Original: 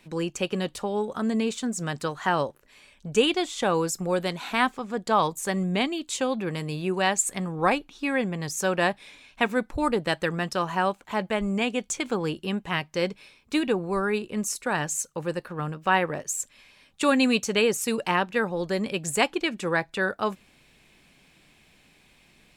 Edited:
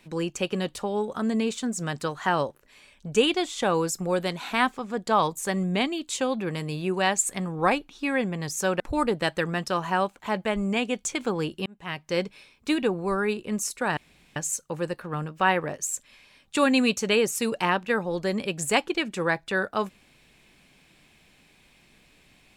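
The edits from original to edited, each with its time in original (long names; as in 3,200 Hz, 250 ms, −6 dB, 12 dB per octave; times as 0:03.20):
0:08.80–0:09.65: remove
0:12.51–0:13.00: fade in
0:14.82: splice in room tone 0.39 s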